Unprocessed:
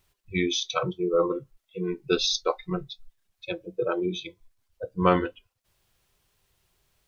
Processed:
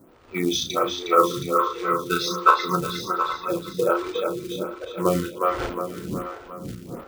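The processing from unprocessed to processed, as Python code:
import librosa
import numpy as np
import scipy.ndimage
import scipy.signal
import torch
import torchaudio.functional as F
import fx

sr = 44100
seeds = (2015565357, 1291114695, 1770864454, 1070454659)

p1 = fx.dmg_wind(x, sr, seeds[0], corner_hz=280.0, level_db=-43.0)
p2 = np.clip(10.0 ** (14.0 / 20.0) * p1, -1.0, 1.0) / 10.0 ** (14.0 / 20.0)
p3 = p1 + F.gain(torch.from_numpy(p2), -9.5).numpy()
p4 = fx.low_shelf(p3, sr, hz=290.0, db=5.5)
p5 = fx.doubler(p4, sr, ms=35.0, db=-5.5)
p6 = p5 + fx.echo_multitap(p5, sr, ms=(52, 817), db=(-18.0, -19.5), dry=0)
p7 = fx.spec_box(p6, sr, start_s=0.94, length_s=2.47, low_hz=820.0, high_hz=2100.0, gain_db=12)
p8 = fx.rider(p7, sr, range_db=3, speed_s=0.5)
p9 = fx.echo_split(p8, sr, split_hz=340.0, low_ms=527, high_ms=361, feedback_pct=52, wet_db=-4)
p10 = fx.quant_float(p9, sr, bits=2)
p11 = fx.highpass(p10, sr, hz=210.0, slope=6)
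p12 = fx.peak_eq(p11, sr, hz=1300.0, db=7.5, octaves=0.25)
y = fx.stagger_phaser(p12, sr, hz=1.3)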